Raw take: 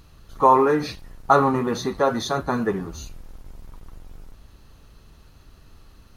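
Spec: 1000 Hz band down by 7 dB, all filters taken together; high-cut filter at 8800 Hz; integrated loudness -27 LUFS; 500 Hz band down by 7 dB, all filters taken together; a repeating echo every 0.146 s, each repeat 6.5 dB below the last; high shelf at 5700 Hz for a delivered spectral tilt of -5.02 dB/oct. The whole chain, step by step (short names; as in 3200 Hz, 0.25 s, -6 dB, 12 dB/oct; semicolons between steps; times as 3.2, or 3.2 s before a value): LPF 8800 Hz; bell 500 Hz -7.5 dB; bell 1000 Hz -6.5 dB; high shelf 5700 Hz +4.5 dB; feedback echo 0.146 s, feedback 47%, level -6.5 dB; gain -1.5 dB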